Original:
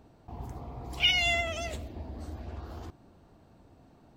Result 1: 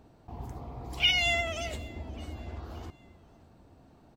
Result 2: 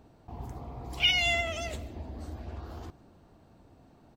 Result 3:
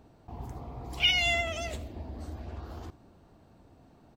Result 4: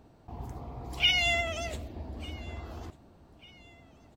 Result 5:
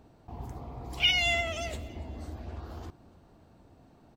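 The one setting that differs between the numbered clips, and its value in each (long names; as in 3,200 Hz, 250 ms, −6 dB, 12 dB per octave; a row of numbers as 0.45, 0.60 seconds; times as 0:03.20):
repeating echo, delay time: 571, 152, 80, 1,196, 286 milliseconds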